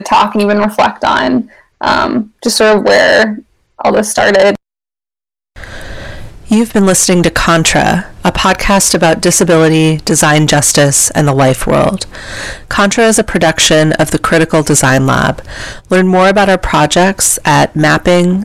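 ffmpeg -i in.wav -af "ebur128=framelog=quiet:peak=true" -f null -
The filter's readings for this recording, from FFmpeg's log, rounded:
Integrated loudness:
  I:          -9.2 LUFS
  Threshold: -19.7 LUFS
Loudness range:
  LRA:         4.2 LU
  Threshold: -29.9 LUFS
  LRA low:   -12.4 LUFS
  LRA high:   -8.2 LUFS
True peak:
  Peak:       -1.3 dBFS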